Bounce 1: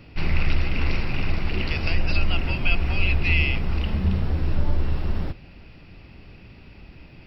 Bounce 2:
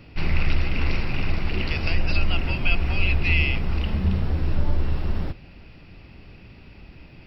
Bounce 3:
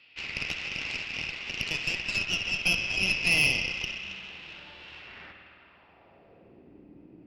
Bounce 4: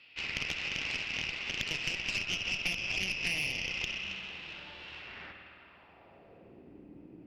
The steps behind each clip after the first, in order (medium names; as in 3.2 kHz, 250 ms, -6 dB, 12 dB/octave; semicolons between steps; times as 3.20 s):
no audible change
band-pass sweep 3 kHz -> 310 Hz, 4.91–6.72 s; spring tank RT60 2.5 s, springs 52 ms, chirp 30 ms, DRR 3 dB; Chebyshev shaper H 6 -15 dB, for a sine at -14 dBFS; trim +1.5 dB
compression 10:1, threshold -29 dBFS, peak gain reduction 11 dB; loudspeaker Doppler distortion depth 0.42 ms